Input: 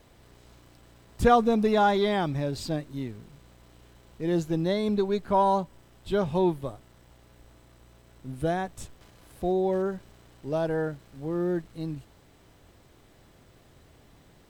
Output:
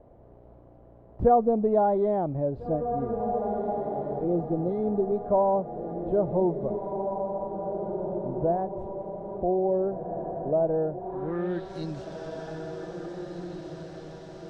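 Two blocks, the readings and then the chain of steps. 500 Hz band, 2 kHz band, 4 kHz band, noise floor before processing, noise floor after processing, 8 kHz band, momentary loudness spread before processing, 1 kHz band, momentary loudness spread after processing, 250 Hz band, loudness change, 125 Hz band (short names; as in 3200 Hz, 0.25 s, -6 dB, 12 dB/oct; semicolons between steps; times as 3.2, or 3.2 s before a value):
+2.5 dB, under -10 dB, under -10 dB, -58 dBFS, -52 dBFS, under -10 dB, 16 LU, -0.5 dB, 14 LU, -1.0 dB, -1.0 dB, -1.0 dB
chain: diffused feedback echo 1.826 s, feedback 42%, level -8 dB; in parallel at +2.5 dB: compressor, threshold -34 dBFS, peak gain reduction 18 dB; on the sum: spectral repair 4.27–5.13, 540–2000 Hz after; low-pass sweep 640 Hz -> 5500 Hz, 10.98–11.71; gain -6 dB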